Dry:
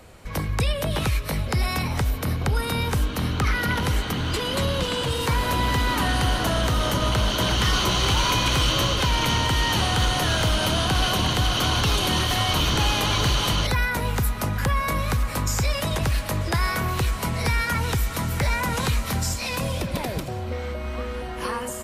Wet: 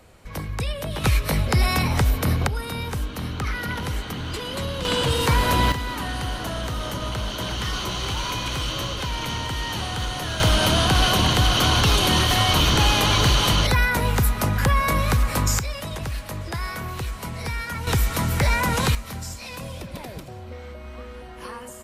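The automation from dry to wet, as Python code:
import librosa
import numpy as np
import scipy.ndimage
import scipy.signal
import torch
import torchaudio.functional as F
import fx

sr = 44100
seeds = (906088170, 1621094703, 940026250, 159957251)

y = fx.gain(x, sr, db=fx.steps((0.0, -4.0), (1.04, 4.0), (2.47, -4.5), (4.85, 3.5), (5.72, -6.0), (10.4, 3.5), (15.59, -6.0), (17.87, 3.0), (18.95, -8.0)))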